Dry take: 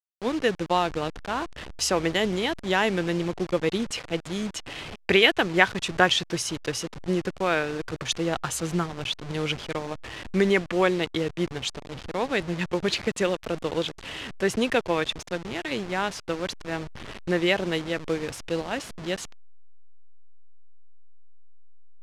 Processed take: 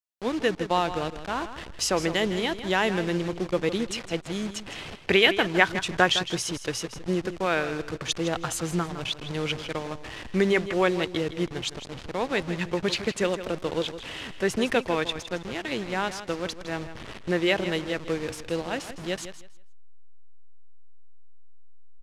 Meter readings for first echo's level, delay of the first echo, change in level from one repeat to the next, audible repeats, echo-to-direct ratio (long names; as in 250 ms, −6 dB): −12.0 dB, 160 ms, −13.5 dB, 2, −12.0 dB